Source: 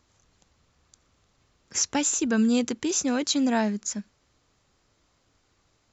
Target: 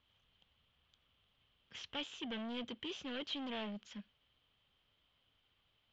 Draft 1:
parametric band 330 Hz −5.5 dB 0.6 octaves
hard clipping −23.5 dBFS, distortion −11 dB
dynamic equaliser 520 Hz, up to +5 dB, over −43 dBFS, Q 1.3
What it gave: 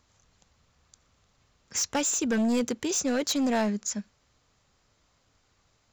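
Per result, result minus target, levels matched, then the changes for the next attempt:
4,000 Hz band −8.5 dB; hard clipping: distortion −5 dB
add after dynamic equaliser: transistor ladder low-pass 3,300 Hz, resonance 80%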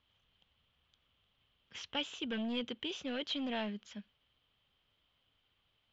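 hard clipping: distortion −5 dB
change: hard clipping −30.5 dBFS, distortion −6 dB

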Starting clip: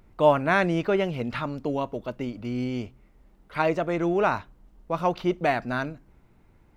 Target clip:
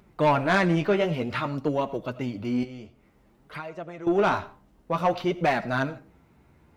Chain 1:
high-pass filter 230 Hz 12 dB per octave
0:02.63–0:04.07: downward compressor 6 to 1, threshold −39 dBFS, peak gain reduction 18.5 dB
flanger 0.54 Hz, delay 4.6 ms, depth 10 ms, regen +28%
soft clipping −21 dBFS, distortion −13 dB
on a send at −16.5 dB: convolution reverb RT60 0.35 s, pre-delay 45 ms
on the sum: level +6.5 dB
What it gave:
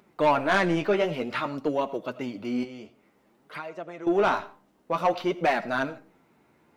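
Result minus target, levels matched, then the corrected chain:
125 Hz band −6.5 dB
high-pass filter 63 Hz 12 dB per octave
0:02.63–0:04.07: downward compressor 6 to 1, threshold −39 dBFS, peak gain reduction 18.5 dB
flanger 0.54 Hz, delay 4.6 ms, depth 10 ms, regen +28%
soft clipping −21 dBFS, distortion −14 dB
on a send at −16.5 dB: convolution reverb RT60 0.35 s, pre-delay 45 ms
on the sum: level +6.5 dB

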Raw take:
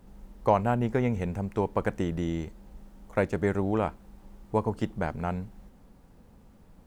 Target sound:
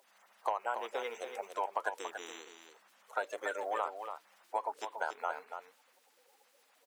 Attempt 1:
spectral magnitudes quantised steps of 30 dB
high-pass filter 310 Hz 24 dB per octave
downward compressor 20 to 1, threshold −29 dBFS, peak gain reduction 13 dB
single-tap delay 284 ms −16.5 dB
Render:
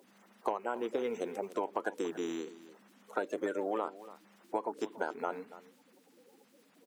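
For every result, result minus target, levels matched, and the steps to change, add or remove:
250 Hz band +15.5 dB; echo-to-direct −8.5 dB
change: high-pass filter 620 Hz 24 dB per octave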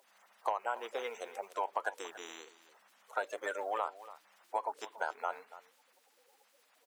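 echo-to-direct −8.5 dB
change: single-tap delay 284 ms −8 dB

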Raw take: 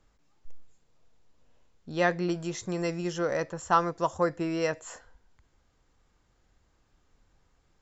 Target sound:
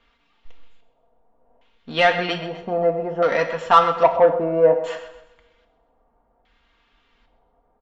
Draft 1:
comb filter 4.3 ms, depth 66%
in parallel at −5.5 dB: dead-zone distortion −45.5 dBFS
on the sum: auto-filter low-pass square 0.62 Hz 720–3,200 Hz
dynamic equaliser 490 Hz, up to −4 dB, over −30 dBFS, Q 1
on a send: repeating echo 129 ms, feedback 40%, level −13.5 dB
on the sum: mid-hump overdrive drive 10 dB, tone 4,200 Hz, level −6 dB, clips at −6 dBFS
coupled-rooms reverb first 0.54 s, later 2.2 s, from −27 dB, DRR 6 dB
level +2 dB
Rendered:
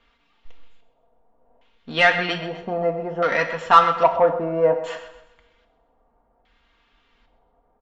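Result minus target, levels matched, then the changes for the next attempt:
2,000 Hz band +3.5 dB
change: dynamic equaliser 1,800 Hz, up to −4 dB, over −30 dBFS, Q 1

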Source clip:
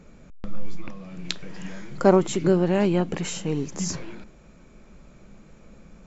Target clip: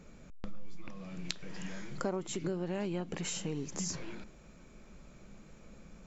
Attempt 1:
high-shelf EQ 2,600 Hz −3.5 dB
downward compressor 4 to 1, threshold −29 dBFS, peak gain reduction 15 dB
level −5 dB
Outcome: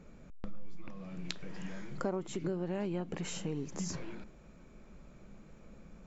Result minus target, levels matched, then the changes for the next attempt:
4,000 Hz band −2.5 dB
change: high-shelf EQ 2,600 Hz +4.5 dB

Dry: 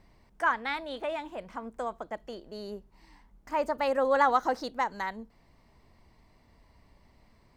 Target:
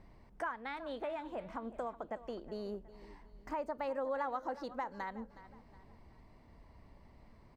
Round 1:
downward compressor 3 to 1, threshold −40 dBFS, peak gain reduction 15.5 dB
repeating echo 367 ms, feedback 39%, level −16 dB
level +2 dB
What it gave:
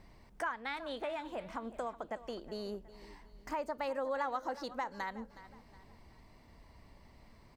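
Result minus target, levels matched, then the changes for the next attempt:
4,000 Hz band +6.0 dB
add after downward compressor: high-shelf EQ 2,400 Hz −10.5 dB

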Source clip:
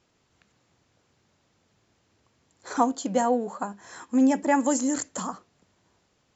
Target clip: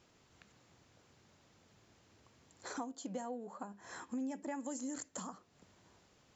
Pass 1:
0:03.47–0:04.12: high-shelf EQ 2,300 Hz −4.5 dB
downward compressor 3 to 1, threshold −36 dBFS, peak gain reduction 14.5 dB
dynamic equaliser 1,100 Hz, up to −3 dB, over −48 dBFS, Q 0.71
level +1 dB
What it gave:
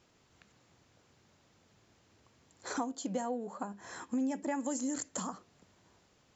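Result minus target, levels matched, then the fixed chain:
downward compressor: peak gain reduction −6.5 dB
0:03.47–0:04.12: high-shelf EQ 2,300 Hz −4.5 dB
downward compressor 3 to 1, threshold −46 dBFS, peak gain reduction 21.5 dB
dynamic equaliser 1,100 Hz, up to −3 dB, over −48 dBFS, Q 0.71
level +1 dB

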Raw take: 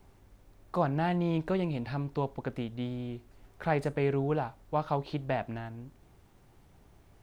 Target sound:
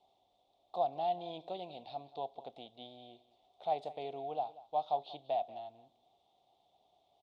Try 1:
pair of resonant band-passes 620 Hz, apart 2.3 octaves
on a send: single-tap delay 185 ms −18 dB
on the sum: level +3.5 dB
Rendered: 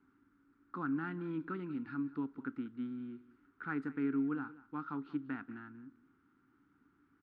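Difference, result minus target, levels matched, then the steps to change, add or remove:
2,000 Hz band +16.5 dB
change: pair of resonant band-passes 1,600 Hz, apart 2.3 octaves

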